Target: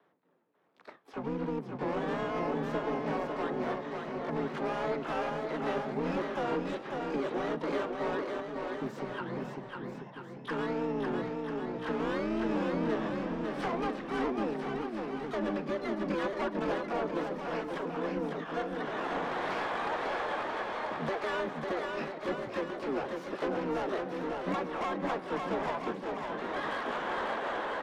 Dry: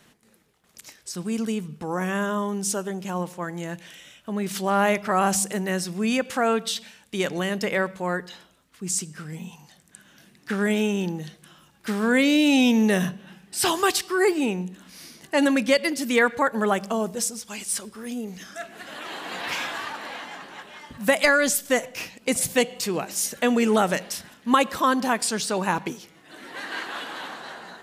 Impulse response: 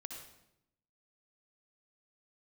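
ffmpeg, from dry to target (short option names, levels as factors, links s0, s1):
-filter_complex "[0:a]highpass=f=88:w=0.5412,highpass=f=88:w=1.3066,aemphasis=mode=reproduction:type=75fm,bandreject=f=60:t=h:w=6,bandreject=f=120:t=h:w=6,bandreject=f=180:t=h:w=6,bandreject=f=240:t=h:w=6,agate=range=0.224:threshold=0.00251:ratio=16:detection=peak,acrossover=split=330 2000:gain=0.141 1 0.2[s0][s1][s2];[s0][s1][s2]amix=inputs=3:normalize=0,acompressor=threshold=0.0141:ratio=4,afreqshift=33,asoftclip=type=hard:threshold=0.0133,adynamicsmooth=sensitivity=4.5:basefreq=2500,asplit=3[s3][s4][s5];[s4]asetrate=29433,aresample=44100,atempo=1.49831,volume=0.891[s6];[s5]asetrate=88200,aresample=44100,atempo=0.5,volume=0.316[s7];[s3][s6][s7]amix=inputs=3:normalize=0,asplit=2[s8][s9];[s9]aecho=0:1:550|990|1342|1624|1849:0.631|0.398|0.251|0.158|0.1[s10];[s8][s10]amix=inputs=2:normalize=0,volume=1.78"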